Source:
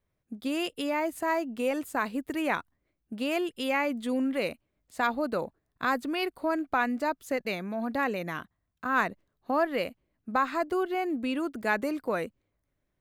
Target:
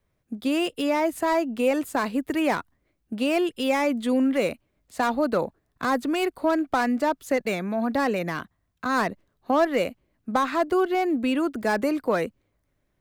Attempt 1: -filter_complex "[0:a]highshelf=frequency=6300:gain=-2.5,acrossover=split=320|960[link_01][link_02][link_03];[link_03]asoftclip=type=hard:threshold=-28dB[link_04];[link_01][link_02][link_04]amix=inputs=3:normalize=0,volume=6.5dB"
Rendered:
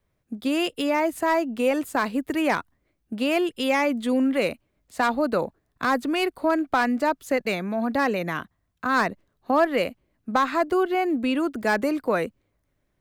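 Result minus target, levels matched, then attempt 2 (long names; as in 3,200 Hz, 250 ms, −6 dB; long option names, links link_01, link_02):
hard clipping: distortion −5 dB
-filter_complex "[0:a]highshelf=frequency=6300:gain=-2.5,acrossover=split=320|960[link_01][link_02][link_03];[link_03]asoftclip=type=hard:threshold=-34.5dB[link_04];[link_01][link_02][link_04]amix=inputs=3:normalize=0,volume=6.5dB"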